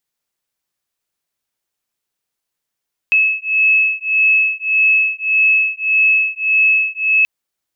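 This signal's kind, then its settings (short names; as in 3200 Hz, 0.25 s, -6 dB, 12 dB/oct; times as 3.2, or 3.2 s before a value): beating tones 2590 Hz, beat 1.7 Hz, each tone -14.5 dBFS 4.13 s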